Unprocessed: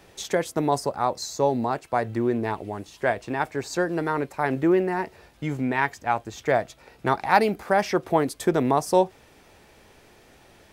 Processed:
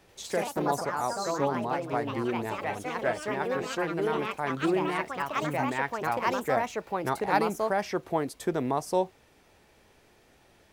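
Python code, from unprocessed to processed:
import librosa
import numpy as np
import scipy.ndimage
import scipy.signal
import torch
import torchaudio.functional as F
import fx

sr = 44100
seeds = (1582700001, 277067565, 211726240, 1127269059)

y = fx.echo_pitch(x, sr, ms=89, semitones=3, count=3, db_per_echo=-3.0)
y = F.gain(torch.from_numpy(y), -7.0).numpy()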